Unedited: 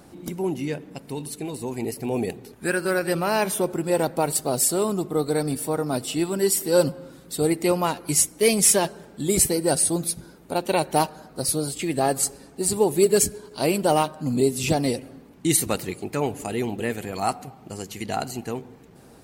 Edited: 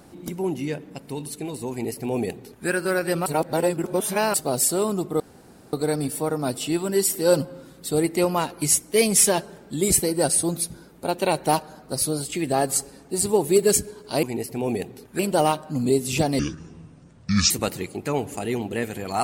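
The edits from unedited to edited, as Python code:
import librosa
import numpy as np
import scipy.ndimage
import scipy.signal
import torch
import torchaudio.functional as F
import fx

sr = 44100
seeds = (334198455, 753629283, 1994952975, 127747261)

y = fx.edit(x, sr, fx.duplicate(start_s=1.71, length_s=0.96, to_s=13.7),
    fx.reverse_span(start_s=3.26, length_s=1.08),
    fx.insert_room_tone(at_s=5.2, length_s=0.53),
    fx.speed_span(start_s=14.9, length_s=0.68, speed=0.61), tone=tone)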